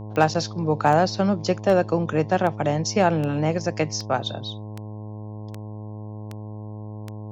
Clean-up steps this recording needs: clip repair -8 dBFS; de-click; de-hum 106.2 Hz, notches 10

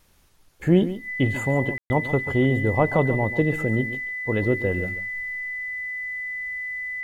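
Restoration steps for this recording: band-stop 2 kHz, Q 30; room tone fill 1.78–1.90 s; inverse comb 140 ms -13 dB

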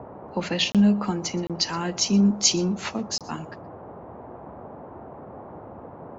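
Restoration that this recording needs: interpolate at 0.72/1.47/3.18 s, 27 ms; noise print and reduce 26 dB; inverse comb 122 ms -23 dB

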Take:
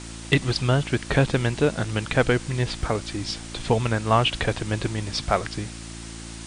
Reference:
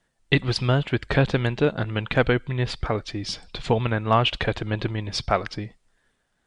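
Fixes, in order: clip repair -7.5 dBFS; de-hum 56.3 Hz, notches 6; interpolate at 2.82 s, 1.2 ms; noise print and reduce 30 dB

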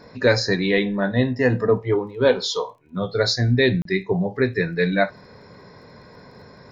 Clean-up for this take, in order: de-click; interpolate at 3.82 s, 33 ms

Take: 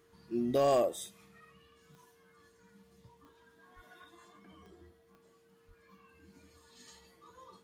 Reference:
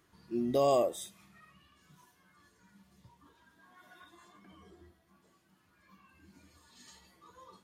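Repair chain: clip repair -21 dBFS; de-click; band-stop 460 Hz, Q 30; de-plosive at 3.75/5.67 s

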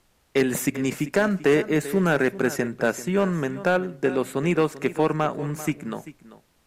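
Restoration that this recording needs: clip repair -11.5 dBFS; expander -49 dBFS, range -21 dB; inverse comb 391 ms -16 dB

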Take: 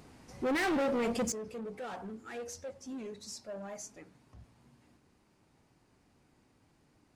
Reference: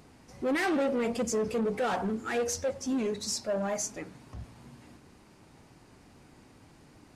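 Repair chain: clip repair -28 dBFS; gain correction +12 dB, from 1.32 s

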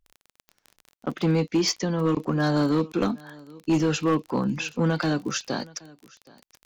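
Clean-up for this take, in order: clip repair -16.5 dBFS; de-click; inverse comb 772 ms -23.5 dB

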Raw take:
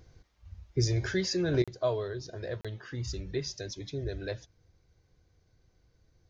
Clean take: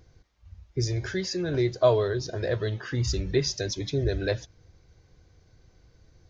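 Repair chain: interpolate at 1.64/2.61 s, 36 ms; gain correction +9 dB, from 1.62 s

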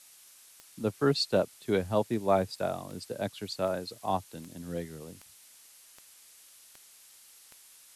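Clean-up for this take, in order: de-click; noise print and reduce 19 dB

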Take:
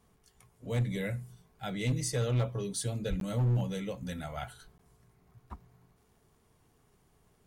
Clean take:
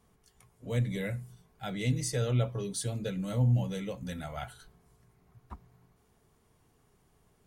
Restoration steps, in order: clip repair -24 dBFS; de-click; de-plosive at 3.09 s; interpolate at 3.20/4.78 s, 12 ms

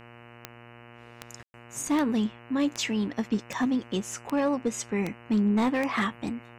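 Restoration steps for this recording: clip repair -18.5 dBFS; de-click; de-hum 118.6 Hz, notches 25; room tone fill 1.43–1.54 s

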